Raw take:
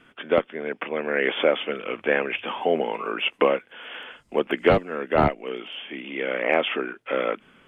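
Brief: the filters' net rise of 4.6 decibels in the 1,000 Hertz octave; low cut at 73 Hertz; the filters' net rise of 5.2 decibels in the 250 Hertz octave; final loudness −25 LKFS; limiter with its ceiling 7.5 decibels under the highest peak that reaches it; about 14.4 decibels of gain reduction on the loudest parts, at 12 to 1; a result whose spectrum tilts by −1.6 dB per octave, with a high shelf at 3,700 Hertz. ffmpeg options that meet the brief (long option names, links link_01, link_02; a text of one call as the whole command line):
ffmpeg -i in.wav -af "highpass=73,equalizer=frequency=250:width_type=o:gain=6.5,equalizer=frequency=1000:width_type=o:gain=5.5,highshelf=frequency=3700:gain=5,acompressor=threshold=-25dB:ratio=12,volume=7.5dB,alimiter=limit=-12.5dB:level=0:latency=1" out.wav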